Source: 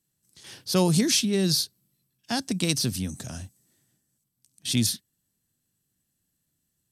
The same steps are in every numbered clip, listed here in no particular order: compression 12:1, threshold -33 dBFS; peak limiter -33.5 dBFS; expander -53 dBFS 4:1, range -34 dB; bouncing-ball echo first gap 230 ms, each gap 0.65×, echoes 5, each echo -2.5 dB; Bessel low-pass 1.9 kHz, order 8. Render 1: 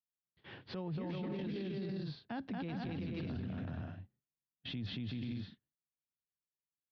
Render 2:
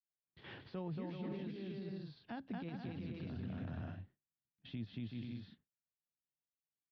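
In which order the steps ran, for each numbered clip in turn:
Bessel low-pass > expander > bouncing-ball echo > peak limiter > compression; bouncing-ball echo > compression > peak limiter > expander > Bessel low-pass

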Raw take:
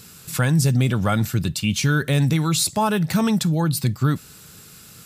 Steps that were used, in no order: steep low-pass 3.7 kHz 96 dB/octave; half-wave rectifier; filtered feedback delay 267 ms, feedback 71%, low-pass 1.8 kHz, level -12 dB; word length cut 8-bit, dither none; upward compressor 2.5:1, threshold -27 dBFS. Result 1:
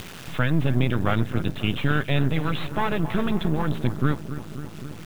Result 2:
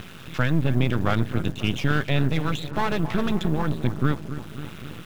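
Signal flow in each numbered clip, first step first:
filtered feedback delay > half-wave rectifier > steep low-pass > word length cut > upward compressor; steep low-pass > upward compressor > word length cut > filtered feedback delay > half-wave rectifier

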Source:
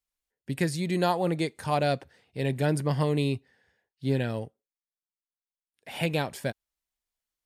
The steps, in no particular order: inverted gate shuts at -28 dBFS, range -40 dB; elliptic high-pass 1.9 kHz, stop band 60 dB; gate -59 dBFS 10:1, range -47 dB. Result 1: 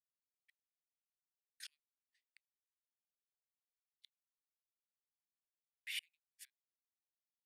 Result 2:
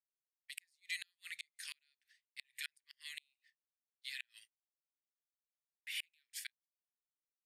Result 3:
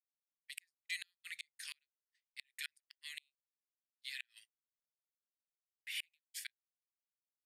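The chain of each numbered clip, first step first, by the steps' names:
inverted gate > elliptic high-pass > gate; elliptic high-pass > gate > inverted gate; elliptic high-pass > inverted gate > gate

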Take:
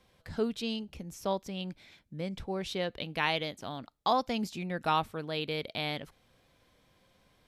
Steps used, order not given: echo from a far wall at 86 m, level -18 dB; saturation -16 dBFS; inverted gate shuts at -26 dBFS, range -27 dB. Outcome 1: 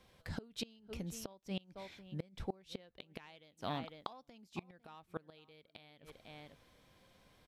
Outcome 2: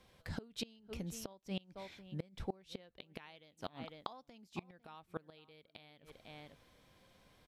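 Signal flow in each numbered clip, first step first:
saturation > echo from a far wall > inverted gate; echo from a far wall > inverted gate > saturation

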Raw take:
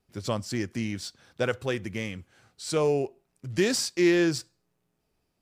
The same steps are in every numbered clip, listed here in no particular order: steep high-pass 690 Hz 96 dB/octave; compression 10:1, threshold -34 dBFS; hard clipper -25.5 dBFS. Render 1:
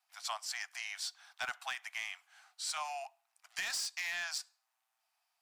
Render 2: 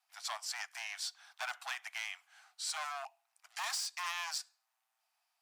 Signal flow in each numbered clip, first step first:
steep high-pass > hard clipper > compression; hard clipper > steep high-pass > compression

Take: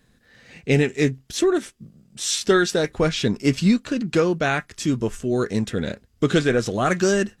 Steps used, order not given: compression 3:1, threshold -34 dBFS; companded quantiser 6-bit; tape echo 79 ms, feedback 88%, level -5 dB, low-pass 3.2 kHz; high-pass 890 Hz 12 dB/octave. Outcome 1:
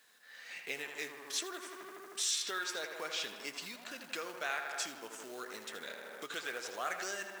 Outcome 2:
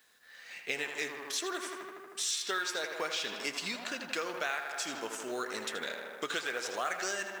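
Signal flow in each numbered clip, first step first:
tape echo > companded quantiser > compression > high-pass; tape echo > high-pass > compression > companded quantiser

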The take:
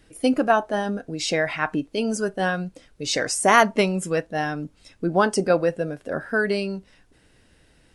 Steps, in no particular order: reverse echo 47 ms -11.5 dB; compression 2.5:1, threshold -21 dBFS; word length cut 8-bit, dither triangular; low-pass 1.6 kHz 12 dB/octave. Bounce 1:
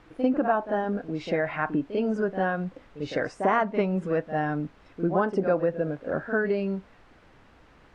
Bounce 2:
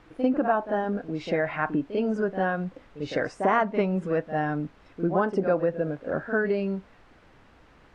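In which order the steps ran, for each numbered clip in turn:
reverse echo > word length cut > compression > low-pass; reverse echo > word length cut > low-pass > compression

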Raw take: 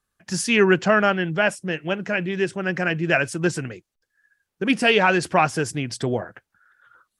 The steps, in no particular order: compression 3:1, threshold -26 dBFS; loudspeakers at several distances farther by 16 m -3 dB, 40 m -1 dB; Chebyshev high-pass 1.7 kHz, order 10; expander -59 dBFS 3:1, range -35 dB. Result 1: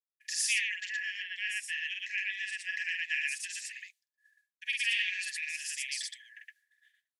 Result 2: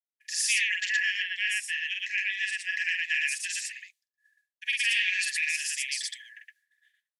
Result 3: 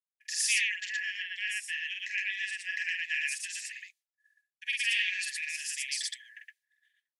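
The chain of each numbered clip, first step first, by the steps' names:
loudspeakers at several distances > compression > Chebyshev high-pass > expander; Chebyshev high-pass > compression > loudspeakers at several distances > expander; compression > Chebyshev high-pass > expander > loudspeakers at several distances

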